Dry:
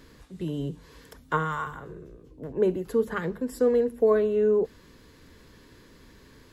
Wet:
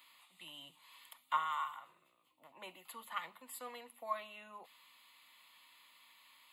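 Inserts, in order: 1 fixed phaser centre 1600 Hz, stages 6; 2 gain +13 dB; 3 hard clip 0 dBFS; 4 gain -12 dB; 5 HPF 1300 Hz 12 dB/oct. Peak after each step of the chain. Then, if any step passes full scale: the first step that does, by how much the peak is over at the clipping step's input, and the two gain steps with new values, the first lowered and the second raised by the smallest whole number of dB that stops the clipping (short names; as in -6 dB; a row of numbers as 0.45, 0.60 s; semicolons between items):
-15.5, -2.5, -2.5, -14.5, -21.5 dBFS; no overload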